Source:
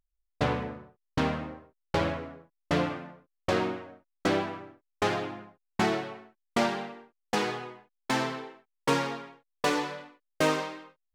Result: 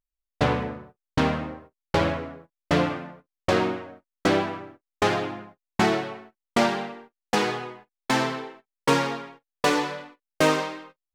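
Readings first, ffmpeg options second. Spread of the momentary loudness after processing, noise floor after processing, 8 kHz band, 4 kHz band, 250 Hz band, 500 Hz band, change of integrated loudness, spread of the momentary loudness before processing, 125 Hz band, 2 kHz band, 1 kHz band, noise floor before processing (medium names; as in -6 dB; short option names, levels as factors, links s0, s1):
17 LU, under -85 dBFS, +5.0 dB, +5.0 dB, +5.0 dB, +5.0 dB, +5.0 dB, 17 LU, +5.0 dB, +5.0 dB, +5.0 dB, -81 dBFS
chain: -af "agate=range=0.224:threshold=0.00251:ratio=16:detection=peak,volume=1.78"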